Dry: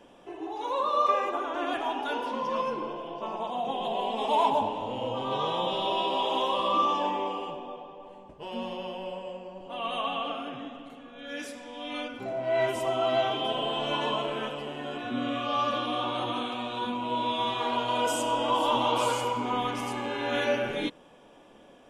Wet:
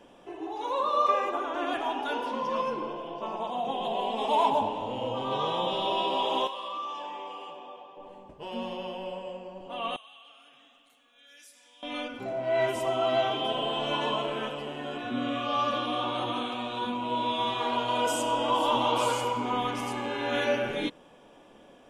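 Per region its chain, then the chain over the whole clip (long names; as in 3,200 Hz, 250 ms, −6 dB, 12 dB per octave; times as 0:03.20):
0:06.47–0:07.97: high-pass filter 830 Hz 6 dB per octave + downward compressor 2 to 1, threshold −39 dBFS
0:09.96–0:11.83: first-order pre-emphasis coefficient 0.97 + downward compressor 2 to 1, threshold −54 dBFS
whole clip: no processing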